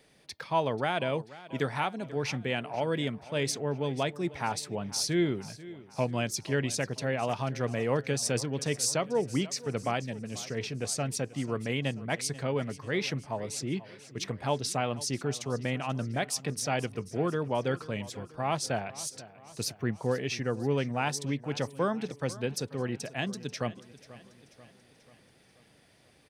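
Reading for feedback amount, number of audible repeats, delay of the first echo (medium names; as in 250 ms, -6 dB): 54%, 4, 487 ms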